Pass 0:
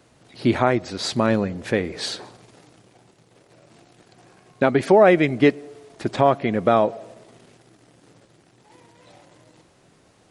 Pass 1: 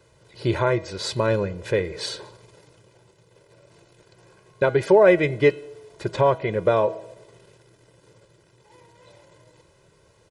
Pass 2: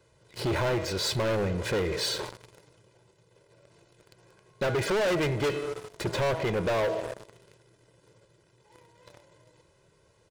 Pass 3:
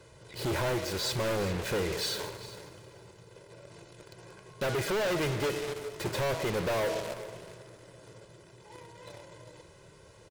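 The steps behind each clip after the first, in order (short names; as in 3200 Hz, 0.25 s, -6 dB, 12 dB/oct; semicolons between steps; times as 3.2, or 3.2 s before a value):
low shelf 380 Hz +3 dB; comb 2 ms, depth 84%; de-hum 161.2 Hz, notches 27; gain -4.5 dB
sample leveller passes 3; soft clip -15.5 dBFS, distortion -10 dB; limiter -24 dBFS, peak gain reduction 8.5 dB
in parallel at -9 dB: sine folder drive 16 dB, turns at -23.5 dBFS; on the sum: echo 0.399 s -16.5 dB; reverb RT60 4.4 s, pre-delay 68 ms, DRR 17 dB; gain -4.5 dB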